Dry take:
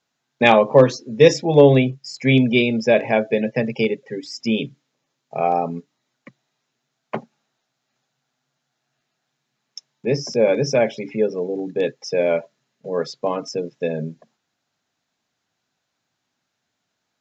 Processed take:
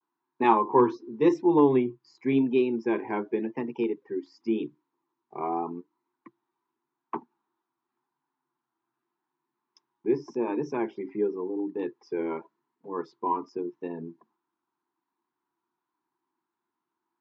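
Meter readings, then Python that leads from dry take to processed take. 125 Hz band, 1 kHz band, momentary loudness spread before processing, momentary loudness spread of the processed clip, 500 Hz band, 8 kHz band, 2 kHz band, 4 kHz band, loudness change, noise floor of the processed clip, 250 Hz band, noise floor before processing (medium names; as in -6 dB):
-17.5 dB, -4.5 dB, 16 LU, 16 LU, -10.5 dB, no reading, -16.0 dB, under -20 dB, -8.5 dB, under -85 dBFS, -5.0 dB, -77 dBFS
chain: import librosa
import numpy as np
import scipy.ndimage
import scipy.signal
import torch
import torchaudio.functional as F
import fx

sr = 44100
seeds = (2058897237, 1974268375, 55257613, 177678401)

y = fx.vibrato(x, sr, rate_hz=0.88, depth_cents=89.0)
y = fx.double_bandpass(y, sr, hz=580.0, octaves=1.5)
y = y * 10.0 ** (4.5 / 20.0)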